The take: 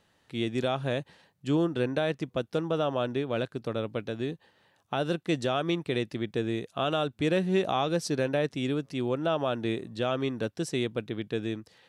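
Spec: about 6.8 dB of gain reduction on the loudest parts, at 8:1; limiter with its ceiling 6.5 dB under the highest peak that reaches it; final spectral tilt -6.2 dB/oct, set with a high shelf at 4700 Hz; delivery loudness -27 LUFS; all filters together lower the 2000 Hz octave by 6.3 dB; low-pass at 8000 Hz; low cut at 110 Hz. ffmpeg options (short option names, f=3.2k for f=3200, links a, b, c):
-af "highpass=110,lowpass=8k,equalizer=f=2k:t=o:g=-7,highshelf=f=4.7k:g=-8.5,acompressor=threshold=-29dB:ratio=8,volume=9.5dB,alimiter=limit=-15.5dB:level=0:latency=1"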